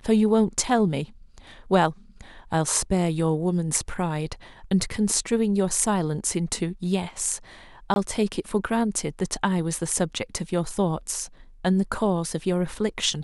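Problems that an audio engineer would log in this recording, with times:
7.94–7.96 gap 21 ms

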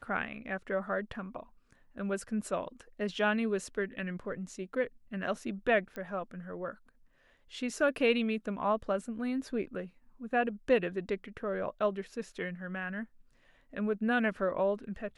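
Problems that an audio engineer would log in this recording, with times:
5.96 pop -27 dBFS

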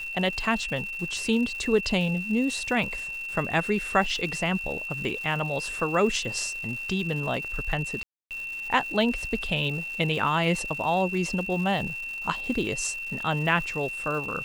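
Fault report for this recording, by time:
crackle 320/s -36 dBFS
tone 2700 Hz -32 dBFS
8.03–8.31 gap 0.278 s

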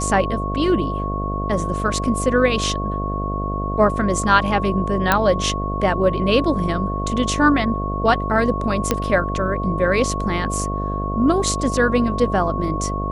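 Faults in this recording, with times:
buzz 50 Hz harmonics 14 -25 dBFS
tone 1100 Hz -26 dBFS
5.12 pop -1 dBFS
8.91 pop -3 dBFS

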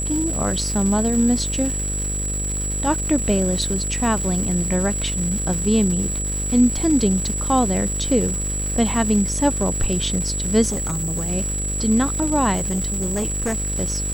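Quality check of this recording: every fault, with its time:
buzz 50 Hz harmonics 12 -27 dBFS
crackle 460/s -27 dBFS
tone 7800 Hz -25 dBFS
10.69–11.3 clipped -20.5 dBFS
12.55–13.72 clipped -19 dBFS

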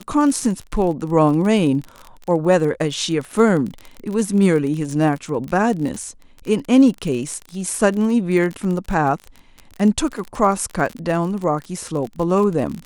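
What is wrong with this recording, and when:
crackle 34/s -25 dBFS

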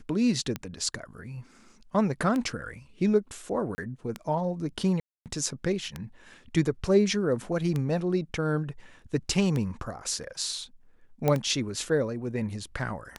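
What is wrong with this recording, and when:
tick 33 1/3 rpm -17 dBFS
3.75–3.78 gap 30 ms
5–5.26 gap 0.258 s
11.28 pop -12 dBFS

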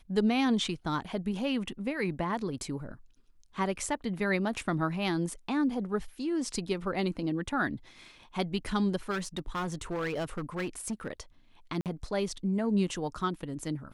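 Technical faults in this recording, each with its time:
9.1–11.11 clipped -29 dBFS
11.81–11.86 gap 48 ms

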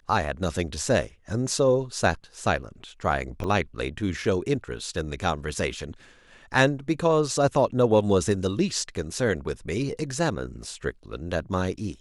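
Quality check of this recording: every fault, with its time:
3.44 gap 2.5 ms

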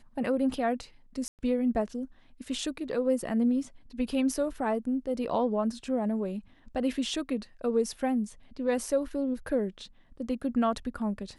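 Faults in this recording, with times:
1.28–1.39 gap 0.108 s

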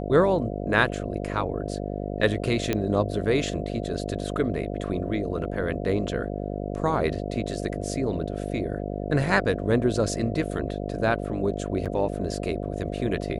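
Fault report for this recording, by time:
buzz 50 Hz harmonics 14 -31 dBFS
2.73 pop -10 dBFS
11.85–11.86 gap 6.9 ms

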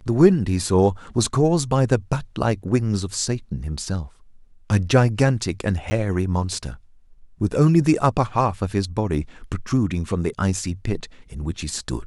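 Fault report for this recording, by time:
5.9–5.91 gap 10 ms

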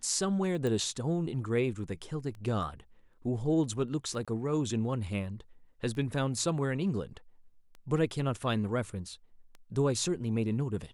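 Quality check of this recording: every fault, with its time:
tick 33 1/3 rpm
0.67 pop
4.25–4.28 gap 26 ms

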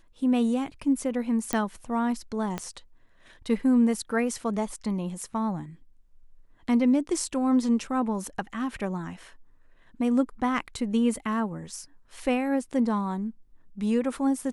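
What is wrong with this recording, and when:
1.53 pop -11 dBFS
2.58 pop -16 dBFS

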